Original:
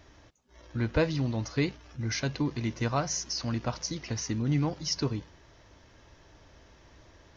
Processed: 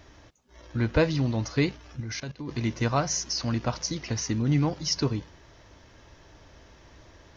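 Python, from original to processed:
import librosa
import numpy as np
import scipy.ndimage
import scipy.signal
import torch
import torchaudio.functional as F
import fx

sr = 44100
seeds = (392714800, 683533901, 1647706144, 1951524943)

y = fx.level_steps(x, sr, step_db=19, at=(2.0, 2.49))
y = y * 10.0 ** (3.5 / 20.0)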